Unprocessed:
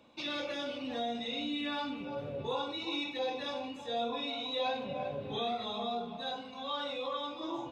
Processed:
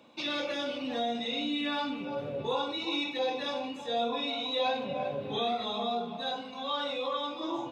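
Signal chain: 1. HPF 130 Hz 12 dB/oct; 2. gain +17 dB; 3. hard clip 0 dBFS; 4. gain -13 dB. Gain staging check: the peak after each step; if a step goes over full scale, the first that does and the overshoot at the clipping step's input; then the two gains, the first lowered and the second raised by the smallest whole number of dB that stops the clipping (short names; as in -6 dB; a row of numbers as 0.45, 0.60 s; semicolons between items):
-23.0, -6.0, -6.0, -19.0 dBFS; no overload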